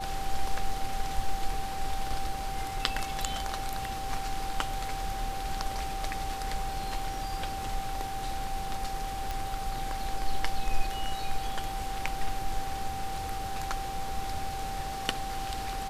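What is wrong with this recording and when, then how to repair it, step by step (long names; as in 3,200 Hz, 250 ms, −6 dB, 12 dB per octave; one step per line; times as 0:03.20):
whistle 780 Hz −35 dBFS
0:09.31: click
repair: click removal
notch filter 780 Hz, Q 30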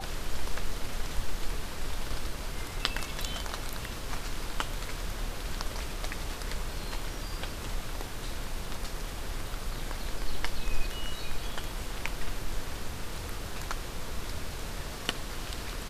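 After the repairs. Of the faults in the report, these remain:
none of them is left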